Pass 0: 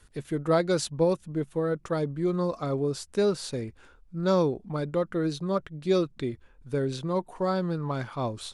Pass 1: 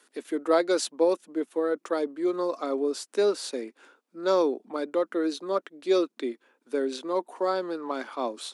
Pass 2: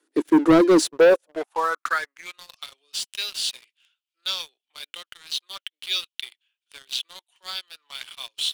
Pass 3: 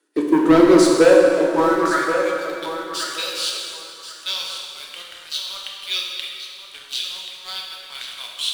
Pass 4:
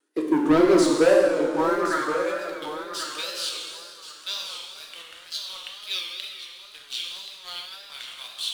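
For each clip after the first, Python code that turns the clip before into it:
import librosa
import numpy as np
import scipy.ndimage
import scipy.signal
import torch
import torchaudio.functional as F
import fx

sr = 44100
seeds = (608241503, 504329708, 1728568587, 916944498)

y1 = scipy.signal.sosfilt(scipy.signal.butter(8, 250.0, 'highpass', fs=sr, output='sos'), x)
y1 = F.gain(torch.from_numpy(y1), 1.5).numpy()
y2 = fx.filter_sweep_highpass(y1, sr, from_hz=310.0, to_hz=3000.0, start_s=0.81, end_s=2.42, q=6.2)
y2 = fx.leveller(y2, sr, passes=3)
y2 = F.gain(torch.from_numpy(y2), -5.5).numpy()
y3 = fx.echo_feedback(y2, sr, ms=1082, feedback_pct=17, wet_db=-10.0)
y3 = fx.rev_plate(y3, sr, seeds[0], rt60_s=2.6, hf_ratio=0.7, predelay_ms=0, drr_db=-2.0)
y4 = fx.wow_flutter(y3, sr, seeds[1], rate_hz=2.1, depth_cents=110.0)
y4 = F.gain(torch.from_numpy(y4), -5.5).numpy()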